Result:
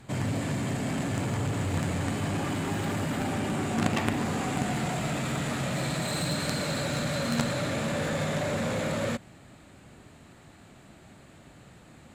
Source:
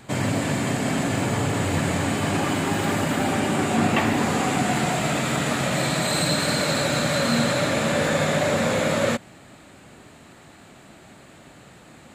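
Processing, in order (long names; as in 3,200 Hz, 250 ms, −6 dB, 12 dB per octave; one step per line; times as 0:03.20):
low-shelf EQ 150 Hz +9.5 dB
harmonic generator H 3 −7 dB, 5 −16 dB, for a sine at −6.5 dBFS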